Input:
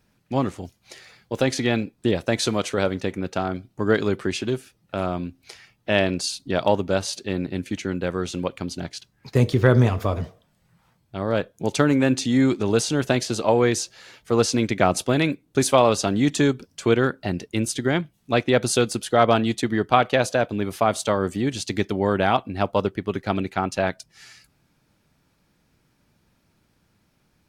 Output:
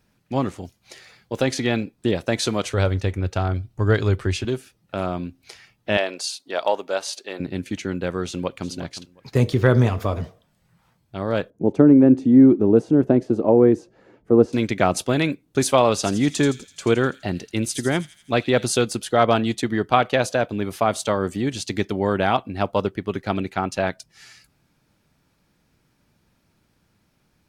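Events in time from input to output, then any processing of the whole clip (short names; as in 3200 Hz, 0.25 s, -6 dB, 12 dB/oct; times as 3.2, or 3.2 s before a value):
2.64–4.45 resonant low shelf 130 Hz +12 dB, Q 1.5
5.97–7.4 Chebyshev high-pass 580 Hz
8.25–8.69 echo throw 0.36 s, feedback 20%, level -14 dB
11.5–14.53 EQ curve 110 Hz 0 dB, 310 Hz +9 dB, 2000 Hz -14 dB, 3900 Hz -25 dB
15.87–18.67 thin delay 83 ms, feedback 57%, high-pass 4800 Hz, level -6 dB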